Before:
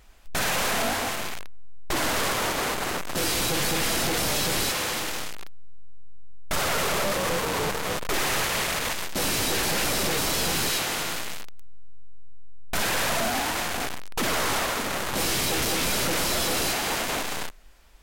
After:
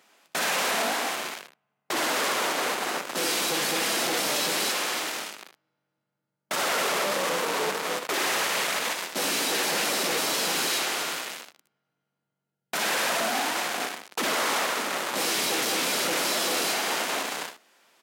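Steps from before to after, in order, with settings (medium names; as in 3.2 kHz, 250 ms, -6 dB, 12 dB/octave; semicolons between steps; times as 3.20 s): Bessel high-pass 290 Hz, order 8; treble shelf 11 kHz -5 dB; on a send: early reflections 62 ms -11.5 dB, 76 ms -12 dB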